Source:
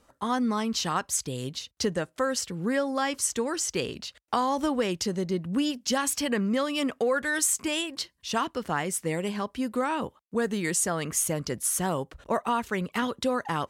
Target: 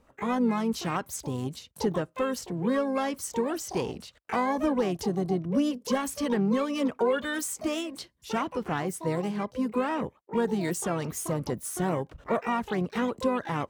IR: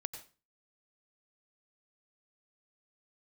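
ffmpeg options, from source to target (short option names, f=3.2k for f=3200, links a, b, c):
-filter_complex "[0:a]asoftclip=type=hard:threshold=-17.5dB,tiltshelf=f=1.2k:g=5.5,asplit=3[a][b][c];[b]asetrate=35002,aresample=44100,atempo=1.25992,volume=-16dB[d];[c]asetrate=88200,aresample=44100,atempo=0.5,volume=-9dB[e];[a][d][e]amix=inputs=3:normalize=0,volume=-4dB"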